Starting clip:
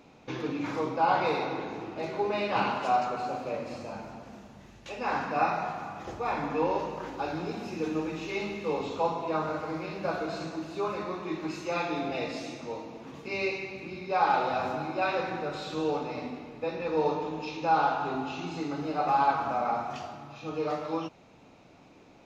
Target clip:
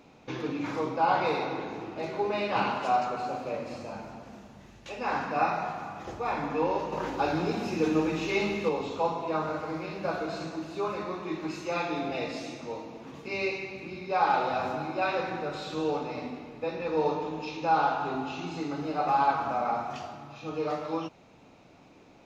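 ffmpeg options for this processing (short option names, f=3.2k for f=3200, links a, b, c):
-filter_complex "[0:a]asettb=1/sr,asplit=3[a][b][c];[a]atrim=end=6.924[d];[b]atrim=start=6.92:end=8.69,asetpts=PTS-STARTPTS,afade=t=in:d=0.004:c=qsin,afade=t=out:st=1.766:d=0.004:c=qsin,acontrast=32[e];[c]atrim=start=8.686[f];[d][e]acrossfade=d=0.004:c1=hsin:c2=qsin[g];[g][f]acrossfade=d=0.004:c1=qsin:c2=hsin"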